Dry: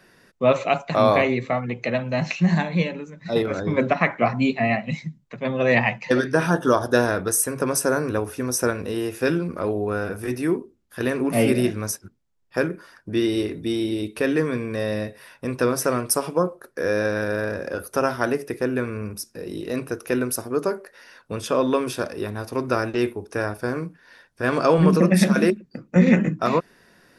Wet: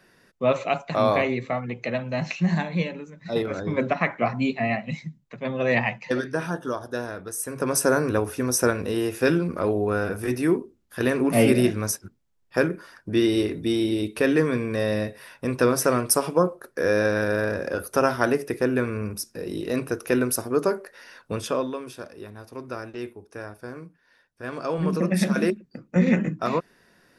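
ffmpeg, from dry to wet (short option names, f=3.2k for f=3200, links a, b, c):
-af "volume=16.5dB,afade=t=out:st=5.79:d=1:silence=0.398107,afade=t=in:st=7.35:d=0.5:silence=0.237137,afade=t=out:st=21.32:d=0.41:silence=0.237137,afade=t=in:st=24.61:d=0.77:silence=0.421697"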